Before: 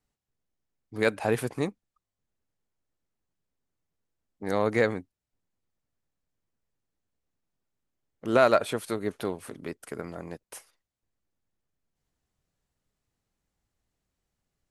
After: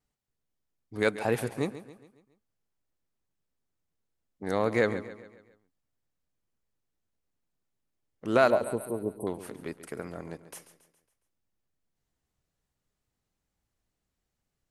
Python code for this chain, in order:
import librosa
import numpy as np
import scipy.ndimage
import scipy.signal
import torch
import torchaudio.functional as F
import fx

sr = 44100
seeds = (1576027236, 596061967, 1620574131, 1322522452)

y = fx.brickwall_bandstop(x, sr, low_hz=1100.0, high_hz=8100.0, at=(8.5, 9.27))
y = fx.wow_flutter(y, sr, seeds[0], rate_hz=2.1, depth_cents=51.0)
y = fx.echo_feedback(y, sr, ms=138, feedback_pct=48, wet_db=-14.0)
y = y * librosa.db_to_amplitude(-1.5)